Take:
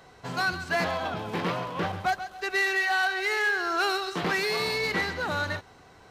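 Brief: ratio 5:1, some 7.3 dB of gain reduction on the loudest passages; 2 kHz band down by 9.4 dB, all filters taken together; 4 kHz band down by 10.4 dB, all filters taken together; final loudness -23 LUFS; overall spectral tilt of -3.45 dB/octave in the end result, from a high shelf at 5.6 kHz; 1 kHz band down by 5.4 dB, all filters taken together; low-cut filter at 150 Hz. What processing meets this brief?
high-pass 150 Hz; peaking EQ 1 kHz -5.5 dB; peaking EQ 2 kHz -8 dB; peaking EQ 4 kHz -8 dB; treble shelf 5.6 kHz -4.5 dB; compression 5:1, threshold -35 dBFS; trim +15.5 dB

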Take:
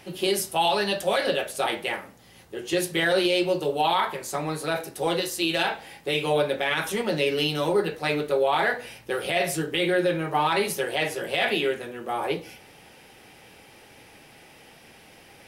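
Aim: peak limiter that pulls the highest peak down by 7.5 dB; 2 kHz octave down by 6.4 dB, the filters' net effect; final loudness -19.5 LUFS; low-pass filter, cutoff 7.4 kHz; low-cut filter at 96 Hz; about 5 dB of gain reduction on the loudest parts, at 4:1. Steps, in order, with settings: high-pass 96 Hz; low-pass 7.4 kHz; peaking EQ 2 kHz -8.5 dB; compression 4:1, threshold -25 dBFS; trim +13 dB; peak limiter -9.5 dBFS

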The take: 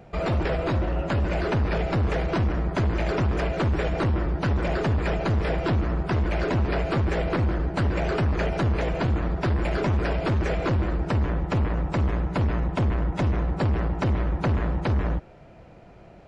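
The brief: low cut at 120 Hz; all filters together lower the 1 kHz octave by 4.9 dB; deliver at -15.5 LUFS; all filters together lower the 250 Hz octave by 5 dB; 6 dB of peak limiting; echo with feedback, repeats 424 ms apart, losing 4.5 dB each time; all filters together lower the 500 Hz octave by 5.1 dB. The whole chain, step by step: high-pass 120 Hz; peaking EQ 250 Hz -5.5 dB; peaking EQ 500 Hz -3.5 dB; peaking EQ 1 kHz -5 dB; peak limiter -22 dBFS; feedback delay 424 ms, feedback 60%, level -4.5 dB; trim +15 dB

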